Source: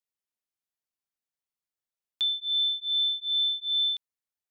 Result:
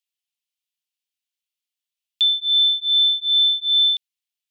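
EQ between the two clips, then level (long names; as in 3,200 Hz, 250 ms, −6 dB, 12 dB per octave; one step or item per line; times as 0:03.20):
high-pass with resonance 2,900 Hz, resonance Q 2.4
+3.0 dB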